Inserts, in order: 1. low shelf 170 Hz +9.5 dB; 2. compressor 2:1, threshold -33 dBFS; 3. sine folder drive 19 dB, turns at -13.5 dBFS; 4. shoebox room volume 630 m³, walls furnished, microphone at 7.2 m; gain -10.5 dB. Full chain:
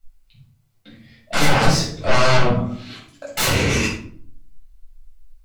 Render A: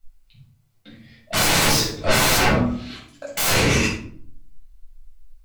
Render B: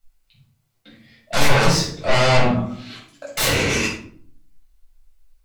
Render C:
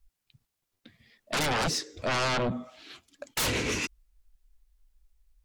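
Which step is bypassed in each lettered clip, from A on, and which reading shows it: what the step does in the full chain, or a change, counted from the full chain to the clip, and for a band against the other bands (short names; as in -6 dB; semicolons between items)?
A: 2, mean gain reduction 7.0 dB; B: 1, momentary loudness spread change +2 LU; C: 4, momentary loudness spread change +4 LU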